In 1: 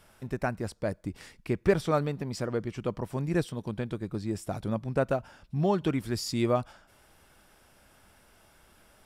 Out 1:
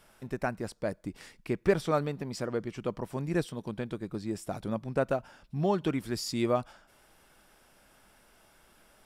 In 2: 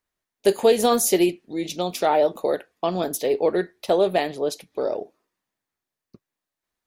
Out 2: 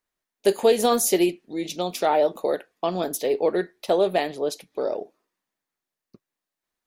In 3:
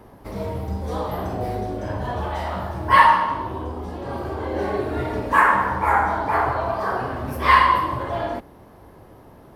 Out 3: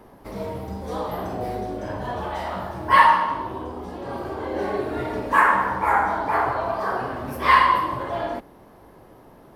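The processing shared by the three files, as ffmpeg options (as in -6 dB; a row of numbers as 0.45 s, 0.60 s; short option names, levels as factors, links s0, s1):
-af "equalizer=f=80:w=1.2:g=-8,volume=0.891"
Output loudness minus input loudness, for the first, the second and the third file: -2.0 LU, -1.0 LU, -1.0 LU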